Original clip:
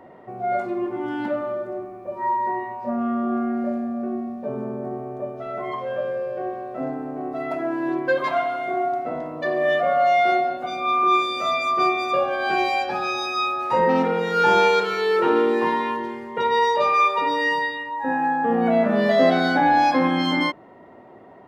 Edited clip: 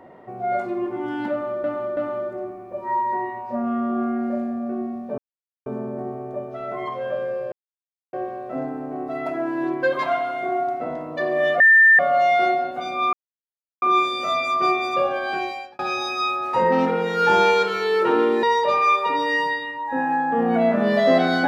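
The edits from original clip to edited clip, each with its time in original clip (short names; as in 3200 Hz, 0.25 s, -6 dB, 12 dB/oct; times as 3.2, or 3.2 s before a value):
1.31–1.64 loop, 3 plays
4.52 insert silence 0.48 s
6.38 insert silence 0.61 s
9.85 add tone 1790 Hz -9 dBFS 0.39 s
10.99 insert silence 0.69 s
12.29–12.96 fade out
15.6–16.55 cut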